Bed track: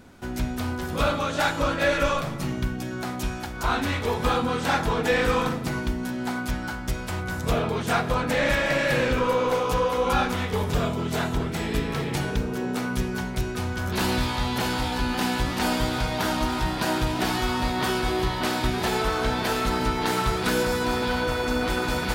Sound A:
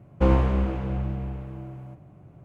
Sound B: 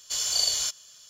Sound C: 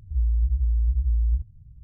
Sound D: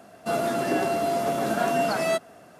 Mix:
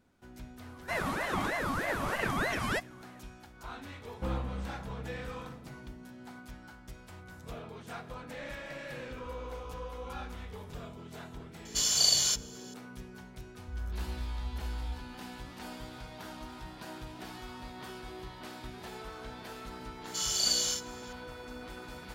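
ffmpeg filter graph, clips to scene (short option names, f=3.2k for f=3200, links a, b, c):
-filter_complex "[3:a]asplit=2[a][b];[2:a]asplit=2[c][d];[0:a]volume=-19.5dB[e];[4:a]aeval=exprs='val(0)*sin(2*PI*900*n/s+900*0.55/3.2*sin(2*PI*3.2*n/s))':c=same[f];[1:a]equalizer=f=400:t=o:w=0.36:g=-8.5[g];[a]acompressor=threshold=-30dB:ratio=6:attack=3.2:release=140:knee=1:detection=peak[h];[d]aecho=1:1:37|59:0.668|0.531[i];[f]atrim=end=2.59,asetpts=PTS-STARTPTS,volume=-5dB,afade=t=in:d=0.004:c=hsin,afade=t=out:st=2.586:d=0.004:c=hsin,adelay=620[j];[g]atrim=end=2.44,asetpts=PTS-STARTPTS,volume=-14.5dB,afade=t=in:d=0.004:c=hsin,afade=t=out:st=2.436:d=0.004:c=hsin,adelay=176841S[k];[h]atrim=end=1.83,asetpts=PTS-STARTPTS,volume=-14dB,afade=t=in:d=0.004:c=hsin,afade=t=out:st=1.826:d=0.004:c=hsin,adelay=9150[l];[c]atrim=end=1.09,asetpts=PTS-STARTPTS,afade=t=in:d=0.004:c=hsin,afade=t=out:st=1.086:d=0.004:c=hsin,adelay=11650[m];[b]atrim=end=1.83,asetpts=PTS-STARTPTS,volume=-15dB,afade=t=in:d=0.004:c=hsin,afade=t=out:st=1.826:d=0.004:c=hsin,adelay=13570[n];[i]atrim=end=1.09,asetpts=PTS-STARTPTS,volume=-6dB,afade=t=in:d=0.004:c=hsin,afade=t=out:st=1.086:d=0.004:c=hsin,adelay=883764S[o];[e][j][k][l][m][n][o]amix=inputs=7:normalize=0"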